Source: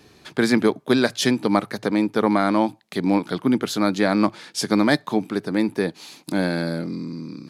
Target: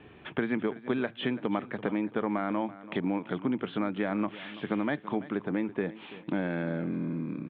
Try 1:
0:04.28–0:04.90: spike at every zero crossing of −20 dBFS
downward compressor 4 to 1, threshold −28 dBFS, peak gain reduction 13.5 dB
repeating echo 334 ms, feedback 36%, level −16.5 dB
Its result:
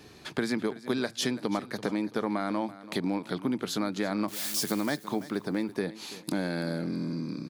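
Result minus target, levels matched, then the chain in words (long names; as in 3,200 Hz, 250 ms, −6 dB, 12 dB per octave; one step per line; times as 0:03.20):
4,000 Hz band +7.5 dB
0:04.28–0:04.90: spike at every zero crossing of −20 dBFS
downward compressor 4 to 1, threshold −28 dBFS, peak gain reduction 13.5 dB
Butterworth low-pass 3,300 Hz 72 dB per octave
repeating echo 334 ms, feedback 36%, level −16.5 dB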